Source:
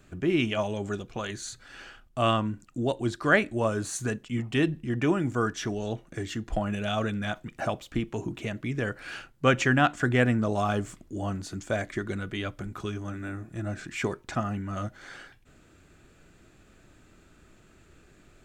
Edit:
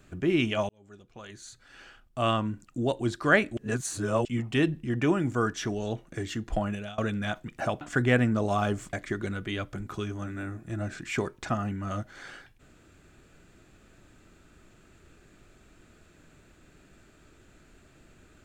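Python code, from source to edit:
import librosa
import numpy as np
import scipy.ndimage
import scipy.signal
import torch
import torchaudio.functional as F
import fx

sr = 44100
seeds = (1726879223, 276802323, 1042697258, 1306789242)

y = fx.edit(x, sr, fx.fade_in_span(start_s=0.69, length_s=1.98),
    fx.reverse_span(start_s=3.57, length_s=0.68),
    fx.fade_out_to(start_s=6.65, length_s=0.33, floor_db=-23.5),
    fx.cut(start_s=7.81, length_s=2.07),
    fx.cut(start_s=11.0, length_s=0.79), tone=tone)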